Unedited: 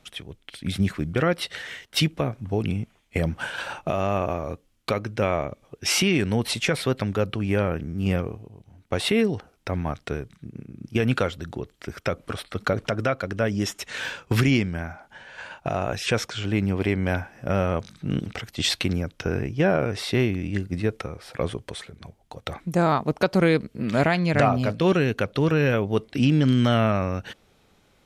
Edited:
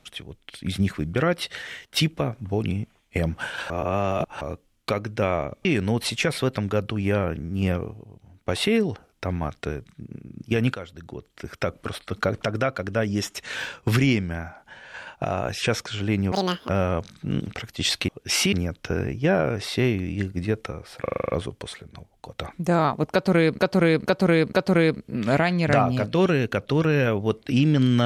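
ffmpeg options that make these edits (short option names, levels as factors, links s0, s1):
-filter_complex "[0:a]asplit=19[s0][s1][s2][s3][s4][s5][s6][s7][s8][s9][s10][s11][s12][s13][s14][s15][s16][s17][s18];[s0]atrim=end=3.702[s19];[s1]atrim=start=3.698:end=4.412,asetpts=PTS-STARTPTS,areverse[s20];[s2]atrim=start=4.408:end=5.652[s21];[s3]atrim=start=6.088:end=11.18,asetpts=PTS-STARTPTS,afade=t=out:st=5.088:d=0.004:c=hsin:silence=0.211349[s22];[s4]atrim=start=11.18:end=16.764,asetpts=PTS-STARTPTS,afade=t=in:d=0.86:silence=0.211349[s23];[s5]atrim=start=16.76:end=17.48,asetpts=PTS-STARTPTS,asetrate=86877,aresample=44100[s24];[s6]atrim=start=17.476:end=18.882[s25];[s7]atrim=start=5.648:end=6.092[s26];[s8]atrim=start=18.878:end=21.412[s27];[s9]atrim=start=21.368:end=21.412[s28];[s10]atrim=start=21.368:end=21.412[s29];[s11]atrim=start=21.368:end=21.412[s30];[s12]atrim=start=21.368:end=21.412[s31];[s13]atrim=start=21.368:end=21.412[s32];[s14]atrim=start=21.368:end=21.412[s33];[s15]atrim=start=21.368:end=23.662[s34];[s16]atrim=start=23.188:end=23.662[s35];[s17]atrim=start=23.188:end=23.662[s36];[s18]atrim=start=23.188[s37];[s19][s20]acrossfade=d=0.004:c1=hsin:c2=hsin[s38];[s38][s21]acrossfade=d=0.004:c1=hsin:c2=hsin[s39];[s22][s23]concat=n=2:v=0:a=1[s40];[s39][s40]acrossfade=d=0.004:c1=hsin:c2=hsin[s41];[s41][s24]acrossfade=d=0.004:c1=hsin:c2=hsin[s42];[s42][s25]acrossfade=d=0.004:c1=hsin:c2=hsin[s43];[s43][s26]acrossfade=d=0.004:c1=hsin:c2=hsin[s44];[s44][s27]acrossfade=d=0.004:c1=hsin:c2=hsin[s45];[s45][s28]acrossfade=d=0.004:c1=hsin:c2=hsin[s46];[s46][s29]acrossfade=d=0.004:c1=hsin:c2=hsin[s47];[s47][s30]acrossfade=d=0.004:c1=hsin:c2=hsin[s48];[s48][s31]acrossfade=d=0.004:c1=hsin:c2=hsin[s49];[s49][s32]acrossfade=d=0.004:c1=hsin:c2=hsin[s50];[s50][s33]acrossfade=d=0.004:c1=hsin:c2=hsin[s51];[s51][s34]acrossfade=d=0.004:c1=hsin:c2=hsin[s52];[s52][s35]acrossfade=d=0.004:c1=hsin:c2=hsin[s53];[s53][s36]acrossfade=d=0.004:c1=hsin:c2=hsin[s54];[s54][s37]acrossfade=d=0.004:c1=hsin:c2=hsin"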